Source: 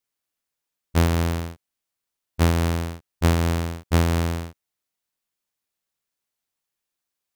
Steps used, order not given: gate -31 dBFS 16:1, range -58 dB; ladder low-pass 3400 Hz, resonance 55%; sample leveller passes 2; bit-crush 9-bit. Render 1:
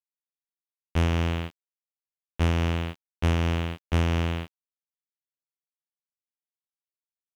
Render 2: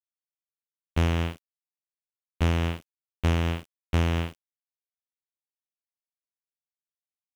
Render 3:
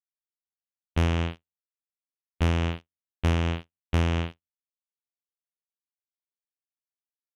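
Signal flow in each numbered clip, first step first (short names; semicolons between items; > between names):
gate > ladder low-pass > sample leveller > bit-crush; ladder low-pass > gate > bit-crush > sample leveller; bit-crush > ladder low-pass > gate > sample leveller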